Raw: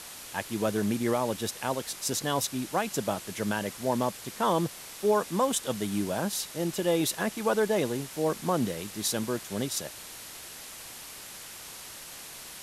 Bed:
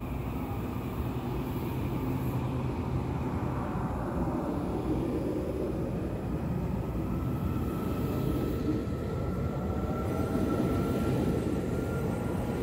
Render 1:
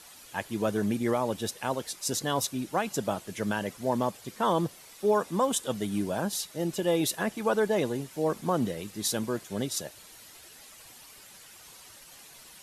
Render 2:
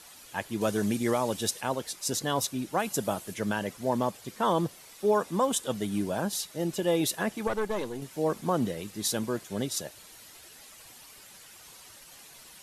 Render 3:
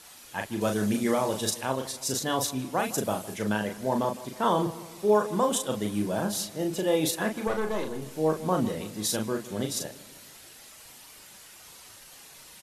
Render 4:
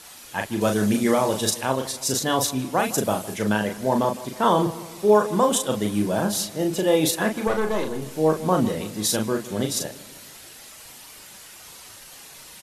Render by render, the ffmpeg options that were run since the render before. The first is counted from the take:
ffmpeg -i in.wav -af "afftdn=noise_reduction=10:noise_floor=-44" out.wav
ffmpeg -i in.wav -filter_complex "[0:a]asettb=1/sr,asplit=3[link_01][link_02][link_03];[link_01]atrim=end=0.614[link_04];[link_02]atrim=start=0.61:end=1.61,asetpts=PTS-STARTPTS,afade=type=in:duration=0.004:curve=qsin,afade=type=out:start_time=0.996:duration=0.004:curve=qsin,equalizer=frequency=7800:width_type=o:width=2.4:gain=7[link_05];[link_03]atrim=start=1.606[link_06];[link_04][link_05]acrossfade=duration=0.004:curve1=hsin:curve2=qsin[link_07];[link_07][link_06]acrossfade=duration=0.004:curve1=qsin:curve2=hsin,asettb=1/sr,asplit=3[link_08][link_09][link_10];[link_08]atrim=end=2.794[link_11];[link_09]atrim=start=2.79:end=3.34,asetpts=PTS-STARTPTS,afade=type=in:duration=0.004:curve=qsin,afade=type=out:start_time=0.546:duration=0.004:curve=qsin,equalizer=frequency=11000:width_type=o:width=0.98:gain=7[link_12];[link_10]atrim=start=3.336[link_13];[link_11][link_12]acrossfade=duration=0.004:curve1=hsin:curve2=qsin[link_14];[link_14][link_13]acrossfade=duration=0.004:curve1=qsin:curve2=hsin,asettb=1/sr,asplit=3[link_15][link_16][link_17];[link_15]atrim=end=7.474[link_18];[link_16]atrim=start=7.47:end=8.02,asetpts=PTS-STARTPTS,afade=type=in:duration=0.004:curve=qsin,afade=type=out:start_time=0.546:duration=0.004:curve=qsin,aeval=exprs='(tanh(12.6*val(0)+0.75)-tanh(0.75))/12.6':channel_layout=same[link_19];[link_17]atrim=start=8.016[link_20];[link_18][link_19]acrossfade=duration=0.004:curve1=hsin:curve2=qsin[link_21];[link_21][link_20]acrossfade=duration=0.004:curve1=qsin:curve2=hsin" out.wav
ffmpeg -i in.wav -filter_complex "[0:a]asplit=2[link_01][link_02];[link_02]adelay=38,volume=-5dB[link_03];[link_01][link_03]amix=inputs=2:normalize=0,asplit=2[link_04][link_05];[link_05]adelay=158,lowpass=frequency=2000:poles=1,volume=-16dB,asplit=2[link_06][link_07];[link_07]adelay=158,lowpass=frequency=2000:poles=1,volume=0.54,asplit=2[link_08][link_09];[link_09]adelay=158,lowpass=frequency=2000:poles=1,volume=0.54,asplit=2[link_10][link_11];[link_11]adelay=158,lowpass=frequency=2000:poles=1,volume=0.54,asplit=2[link_12][link_13];[link_13]adelay=158,lowpass=frequency=2000:poles=1,volume=0.54[link_14];[link_04][link_06][link_08][link_10][link_12][link_14]amix=inputs=6:normalize=0" out.wav
ffmpeg -i in.wav -af "volume=5.5dB" out.wav

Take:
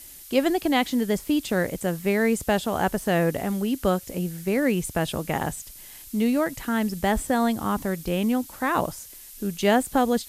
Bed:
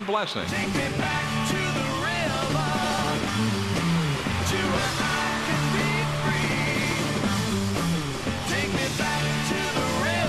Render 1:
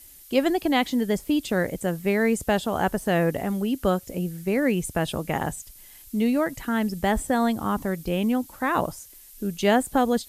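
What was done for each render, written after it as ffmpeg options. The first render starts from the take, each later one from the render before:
ffmpeg -i in.wav -af "afftdn=noise_reduction=6:noise_floor=-44" out.wav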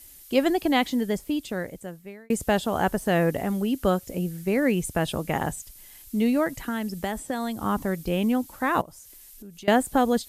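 ffmpeg -i in.wav -filter_complex "[0:a]asettb=1/sr,asplit=3[link_01][link_02][link_03];[link_01]atrim=end=6.634[link_04];[link_02]atrim=start=6.63:end=7.62,asetpts=PTS-STARTPTS,afade=type=in:duration=0.004:curve=qsin,afade=type=out:start_time=0.986:duration=0.004:curve=qsin,acrossover=split=140|2700|6500[link_05][link_06][link_07][link_08];[link_05]acompressor=threshold=-46dB:ratio=3[link_09];[link_06]acompressor=threshold=-28dB:ratio=3[link_10];[link_07]acompressor=threshold=-43dB:ratio=3[link_11];[link_08]acompressor=threshold=-44dB:ratio=3[link_12];[link_09][link_10][link_11][link_12]amix=inputs=4:normalize=0[link_13];[link_03]atrim=start=7.616[link_14];[link_04][link_13]acrossfade=duration=0.004:curve1=hsin:curve2=qsin[link_15];[link_15][link_14]acrossfade=duration=0.004:curve1=qsin:curve2=hsin,asettb=1/sr,asplit=3[link_16][link_17][link_18];[link_16]atrim=end=8.814[link_19];[link_17]atrim=start=8.81:end=9.68,asetpts=PTS-STARTPTS,afade=type=in:duration=0.004:curve=qsin,afade=type=out:start_time=0.866:duration=0.004:curve=qsin,acompressor=threshold=-43dB:ratio=4:attack=3.2:release=140:knee=1:detection=peak[link_20];[link_18]atrim=start=9.676[link_21];[link_19][link_20]acrossfade=duration=0.004:curve1=hsin:curve2=qsin[link_22];[link_22][link_21]acrossfade=duration=0.004:curve1=qsin:curve2=hsin,asplit=2[link_23][link_24];[link_23]atrim=end=2.3,asetpts=PTS-STARTPTS,afade=type=out:start_time=0.76:duration=1.54[link_25];[link_24]atrim=start=2.3,asetpts=PTS-STARTPTS,afade=type=in:duration=0.004:curve=hsin[link_26];[link_25][link_26]concat=n=2:v=0:a=1" out.wav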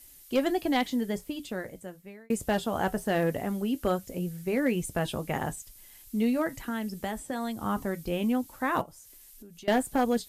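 ffmpeg -i in.wav -af "flanger=delay=7.6:depth=1.3:regen=-63:speed=0.22:shape=sinusoidal,asoftclip=type=hard:threshold=-17.5dB" out.wav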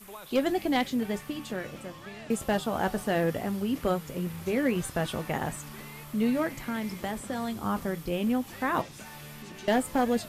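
ffmpeg -i in.wav -i bed.wav -filter_complex "[1:a]volume=-20dB[link_01];[0:a][link_01]amix=inputs=2:normalize=0" out.wav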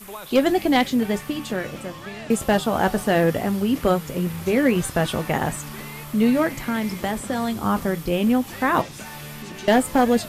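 ffmpeg -i in.wav -af "volume=8dB" out.wav

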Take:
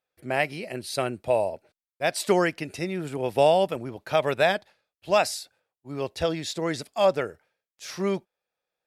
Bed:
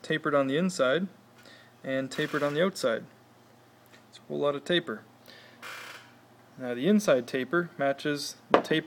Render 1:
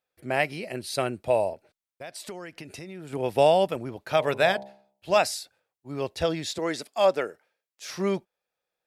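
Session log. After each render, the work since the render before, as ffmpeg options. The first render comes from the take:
ffmpeg -i in.wav -filter_complex "[0:a]asettb=1/sr,asplit=3[link_01][link_02][link_03];[link_01]atrim=end=1.534[link_04];[link_02]atrim=start=1.53:end=3.13,asetpts=PTS-STARTPTS,afade=type=in:duration=0.004:curve=qsin,afade=type=out:start_time=1.596:duration=0.004:curve=qsin,acompressor=threshold=-37dB:ratio=5:attack=3.2:release=140:knee=1:detection=peak[link_05];[link_03]atrim=start=3.126[link_06];[link_04][link_05]acrossfade=duration=0.004:curve1=hsin:curve2=qsin[link_07];[link_07][link_06]acrossfade=duration=0.004:curve1=qsin:curve2=hsin,asettb=1/sr,asplit=3[link_08][link_09][link_10];[link_08]atrim=end=4.014[link_11];[link_09]atrim=start=4.01:end=5.17,asetpts=PTS-STARTPTS,afade=type=in:duration=0.004:curve=qsin,afade=type=out:start_time=1.156:duration=0.004:curve=qsin,bandreject=frequency=67.12:width_type=h:width=4,bandreject=frequency=134.24:width_type=h:width=4,bandreject=frequency=201.36:width_type=h:width=4,bandreject=frequency=268.48:width_type=h:width=4,bandreject=frequency=335.6:width_type=h:width=4,bandreject=frequency=402.72:width_type=h:width=4,bandreject=frequency=469.84:width_type=h:width=4,bandreject=frequency=536.96:width_type=h:width=4,bandreject=frequency=604.08:width_type=h:width=4,bandreject=frequency=671.2:width_type=h:width=4,bandreject=frequency=738.32:width_type=h:width=4,bandreject=frequency=805.44:width_type=h:width=4,bandreject=frequency=872.56:width_type=h:width=4,bandreject=frequency=939.68:width_type=h:width=4,bandreject=frequency=1006.8:width_type=h:width=4,bandreject=frequency=1073.92:width_type=h:width=4[link_12];[link_10]atrim=start=5.166[link_13];[link_11][link_12]acrossfade=duration=0.004:curve1=hsin:curve2=qsin[link_14];[link_14][link_13]acrossfade=duration=0.004:curve1=qsin:curve2=hsin,asettb=1/sr,asplit=3[link_15][link_16][link_17];[link_15]atrim=end=6.584[link_18];[link_16]atrim=start=6.58:end=7.89,asetpts=PTS-STARTPTS,afade=type=in:duration=0.004:curve=qsin,afade=type=out:start_time=1.306:duration=0.004:curve=qsin,highpass=240[link_19];[link_17]atrim=start=7.886[link_20];[link_18][link_19]acrossfade=duration=0.004:curve1=hsin:curve2=qsin[link_21];[link_21][link_20]acrossfade=duration=0.004:curve1=qsin:curve2=hsin" out.wav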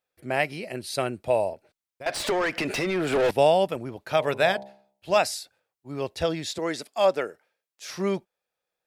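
ffmpeg -i in.wav -filter_complex "[0:a]asettb=1/sr,asplit=3[link_01][link_02][link_03];[link_01]atrim=end=2.064[link_04];[link_02]atrim=start=2.06:end=3.31,asetpts=PTS-STARTPTS,afade=type=in:duration=0.004:curve=qsin,afade=type=out:start_time=1.246:duration=0.004:curve=qsin,asplit=2[link_05][link_06];[link_06]highpass=frequency=720:poles=1,volume=32dB,asoftclip=type=tanh:threshold=-14.5dB[link_07];[link_05][link_07]amix=inputs=2:normalize=0,lowpass=frequency=2100:poles=1,volume=-6dB[link_08];[link_03]atrim=start=3.306[link_09];[link_04][link_08]acrossfade=duration=0.004:curve1=hsin:curve2=qsin[link_10];[link_10][link_09]acrossfade=duration=0.004:curve1=qsin:curve2=hsin" out.wav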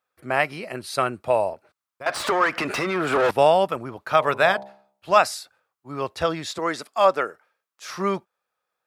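ffmpeg -i in.wav -af "highpass=52,equalizer=frequency=1200:width_type=o:width=0.83:gain=12.5" out.wav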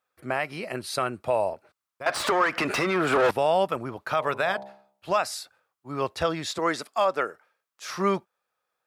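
ffmpeg -i in.wav -af "alimiter=limit=-13dB:level=0:latency=1:release=195" out.wav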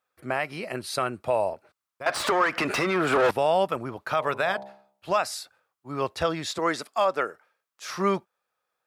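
ffmpeg -i in.wav -af anull out.wav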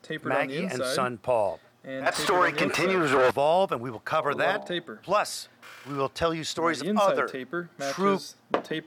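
ffmpeg -i in.wav -i bed.wav -filter_complex "[1:a]volume=-5dB[link_01];[0:a][link_01]amix=inputs=2:normalize=0" out.wav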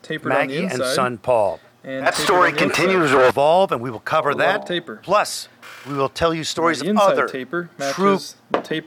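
ffmpeg -i in.wav -af "volume=7.5dB,alimiter=limit=-3dB:level=0:latency=1" out.wav

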